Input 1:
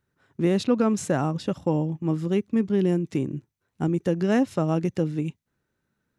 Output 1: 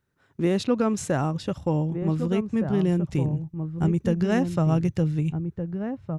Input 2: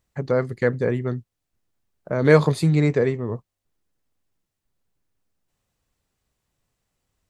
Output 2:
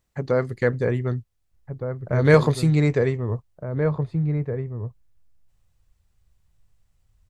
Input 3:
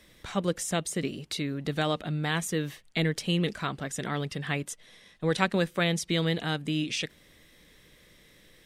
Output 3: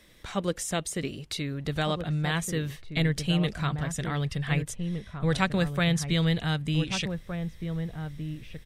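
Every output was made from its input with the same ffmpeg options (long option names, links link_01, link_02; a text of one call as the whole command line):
ffmpeg -i in.wav -filter_complex "[0:a]asplit=2[link_01][link_02];[link_02]adelay=1516,volume=-7dB,highshelf=frequency=4000:gain=-34.1[link_03];[link_01][link_03]amix=inputs=2:normalize=0,asubboost=boost=8.5:cutoff=100" out.wav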